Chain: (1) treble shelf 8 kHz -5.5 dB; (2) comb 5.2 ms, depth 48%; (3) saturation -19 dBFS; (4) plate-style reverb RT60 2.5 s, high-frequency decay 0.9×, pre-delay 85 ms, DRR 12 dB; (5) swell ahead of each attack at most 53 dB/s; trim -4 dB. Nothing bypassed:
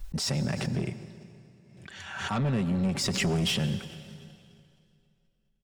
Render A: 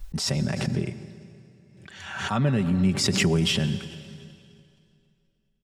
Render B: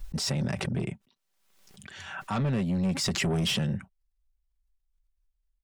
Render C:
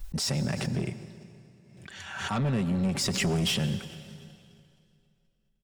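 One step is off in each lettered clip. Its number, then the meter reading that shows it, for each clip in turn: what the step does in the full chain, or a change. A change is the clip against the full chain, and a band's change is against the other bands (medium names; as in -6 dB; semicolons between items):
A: 3, distortion -11 dB; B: 4, momentary loudness spread change -6 LU; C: 1, 8 kHz band +1.5 dB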